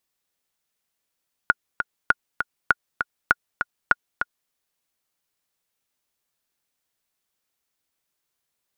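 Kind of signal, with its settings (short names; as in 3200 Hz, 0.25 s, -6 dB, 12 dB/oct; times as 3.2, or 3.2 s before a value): metronome 199 bpm, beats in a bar 2, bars 5, 1440 Hz, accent 7.5 dB -2 dBFS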